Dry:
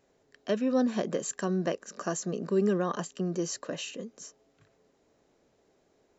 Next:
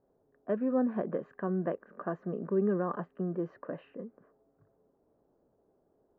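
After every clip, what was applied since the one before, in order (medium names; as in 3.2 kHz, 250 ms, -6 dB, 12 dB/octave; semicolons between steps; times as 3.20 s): level-controlled noise filter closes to 940 Hz, open at -26.5 dBFS; low-pass 1.6 kHz 24 dB/octave; trim -2.5 dB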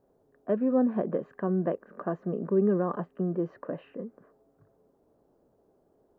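dynamic bell 1.6 kHz, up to -5 dB, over -52 dBFS, Q 1.1; trim +4.5 dB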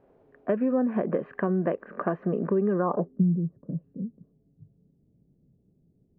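compression 4:1, threshold -29 dBFS, peak gain reduction 8.5 dB; low-pass sweep 2.4 kHz -> 160 Hz, 2.71–3.23 s; trim +6.5 dB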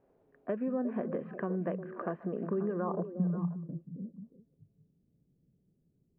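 repeats whose band climbs or falls 178 ms, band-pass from 160 Hz, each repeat 1.4 oct, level -4.5 dB; trim -8.5 dB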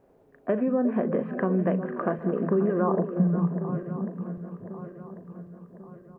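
backward echo that repeats 547 ms, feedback 67%, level -12.5 dB; doubling 37 ms -14 dB; trim +8.5 dB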